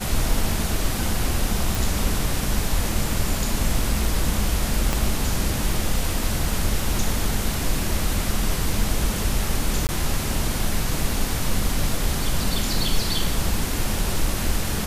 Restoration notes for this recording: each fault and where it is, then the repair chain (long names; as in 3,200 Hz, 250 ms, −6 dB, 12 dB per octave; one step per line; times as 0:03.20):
0:01.75: click
0:04.93: click
0:09.87–0:09.89: drop-out 19 ms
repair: click removal
repair the gap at 0:09.87, 19 ms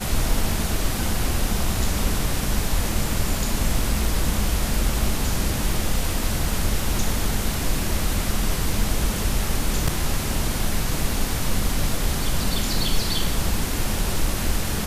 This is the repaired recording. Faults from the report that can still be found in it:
0:04.93: click